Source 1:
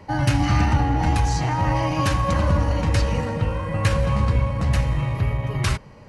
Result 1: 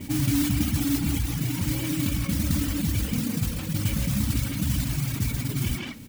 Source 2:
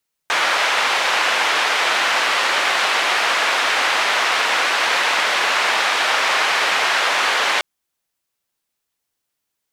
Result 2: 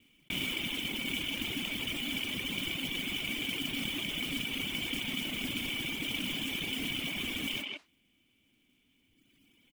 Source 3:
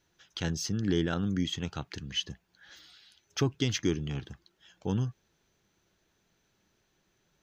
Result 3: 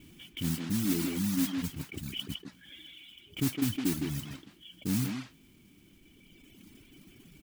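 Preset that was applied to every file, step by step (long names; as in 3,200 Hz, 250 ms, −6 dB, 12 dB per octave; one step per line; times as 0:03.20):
phase distortion by the signal itself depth 0.35 ms
dynamic equaliser 180 Hz, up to +4 dB, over −37 dBFS, Q 0.95
formant resonators in series i
noise that follows the level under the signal 11 dB
reverb reduction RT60 1.6 s
parametric band 450 Hz −4.5 dB 1.8 octaves
far-end echo of a speakerphone 160 ms, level −6 dB
envelope flattener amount 50%
level +4 dB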